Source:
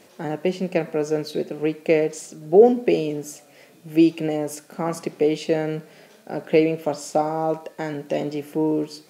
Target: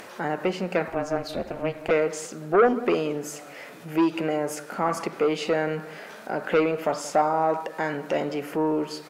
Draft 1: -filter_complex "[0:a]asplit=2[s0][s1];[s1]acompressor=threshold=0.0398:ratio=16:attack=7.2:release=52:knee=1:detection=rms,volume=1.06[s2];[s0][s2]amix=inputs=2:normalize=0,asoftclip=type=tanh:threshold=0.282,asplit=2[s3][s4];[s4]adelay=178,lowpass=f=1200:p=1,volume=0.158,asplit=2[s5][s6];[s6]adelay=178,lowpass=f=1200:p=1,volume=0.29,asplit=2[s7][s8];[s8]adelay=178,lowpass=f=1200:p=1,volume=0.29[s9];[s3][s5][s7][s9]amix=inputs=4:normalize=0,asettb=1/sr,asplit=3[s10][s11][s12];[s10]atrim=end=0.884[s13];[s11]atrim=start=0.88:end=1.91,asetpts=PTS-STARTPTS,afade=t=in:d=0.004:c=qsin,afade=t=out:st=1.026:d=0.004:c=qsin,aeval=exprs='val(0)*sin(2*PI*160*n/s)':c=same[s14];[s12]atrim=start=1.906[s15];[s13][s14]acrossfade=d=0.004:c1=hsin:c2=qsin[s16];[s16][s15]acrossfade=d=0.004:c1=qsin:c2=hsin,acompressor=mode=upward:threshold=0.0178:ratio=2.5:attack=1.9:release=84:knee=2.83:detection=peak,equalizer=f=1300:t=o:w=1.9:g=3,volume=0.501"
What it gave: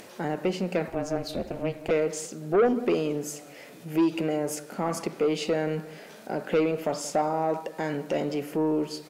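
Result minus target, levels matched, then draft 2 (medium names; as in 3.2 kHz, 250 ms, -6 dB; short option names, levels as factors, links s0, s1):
compression: peak gain reduction -7.5 dB; 1 kHz band -3.0 dB
-filter_complex "[0:a]asplit=2[s0][s1];[s1]acompressor=threshold=0.0158:ratio=16:attack=7.2:release=52:knee=1:detection=rms,volume=1.06[s2];[s0][s2]amix=inputs=2:normalize=0,asoftclip=type=tanh:threshold=0.282,asplit=2[s3][s4];[s4]adelay=178,lowpass=f=1200:p=1,volume=0.158,asplit=2[s5][s6];[s6]adelay=178,lowpass=f=1200:p=1,volume=0.29,asplit=2[s7][s8];[s8]adelay=178,lowpass=f=1200:p=1,volume=0.29[s9];[s3][s5][s7][s9]amix=inputs=4:normalize=0,asettb=1/sr,asplit=3[s10][s11][s12];[s10]atrim=end=0.884[s13];[s11]atrim=start=0.88:end=1.91,asetpts=PTS-STARTPTS,afade=t=in:d=0.004:c=qsin,afade=t=out:st=1.026:d=0.004:c=qsin,aeval=exprs='val(0)*sin(2*PI*160*n/s)':c=same[s14];[s12]atrim=start=1.906[s15];[s13][s14]acrossfade=d=0.004:c1=hsin:c2=qsin[s16];[s16][s15]acrossfade=d=0.004:c1=qsin:c2=hsin,acompressor=mode=upward:threshold=0.0178:ratio=2.5:attack=1.9:release=84:knee=2.83:detection=peak,equalizer=f=1300:t=o:w=1.9:g=12.5,volume=0.501"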